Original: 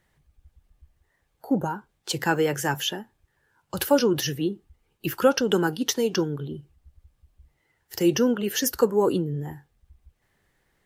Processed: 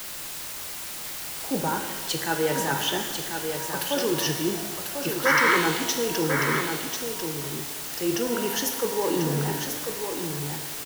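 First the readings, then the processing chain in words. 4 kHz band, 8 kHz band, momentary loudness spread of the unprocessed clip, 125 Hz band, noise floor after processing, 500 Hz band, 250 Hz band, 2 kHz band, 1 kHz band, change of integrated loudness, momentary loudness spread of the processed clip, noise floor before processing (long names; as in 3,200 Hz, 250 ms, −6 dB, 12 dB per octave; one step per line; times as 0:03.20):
+3.0 dB, +4.5 dB, 15 LU, 0.0 dB, −36 dBFS, −2.5 dB, −3.0 dB, +7.0 dB, +3.5 dB, −1.0 dB, 10 LU, −72 dBFS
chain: high-pass filter 130 Hz 24 dB per octave
parametric band 200 Hz −6.5 dB 0.77 octaves
reversed playback
downward compressor, threshold −33 dBFS, peak gain reduction 17.5 dB
reversed playback
sound drawn into the spectrogram noise, 0:05.25–0:05.57, 890–2,300 Hz −29 dBFS
in parallel at −4.5 dB: bit-depth reduction 6 bits, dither triangular
on the sum: single-tap delay 1,043 ms −6.5 dB
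reverb with rising layers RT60 1.4 s, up +12 semitones, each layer −8 dB, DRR 4.5 dB
level +3.5 dB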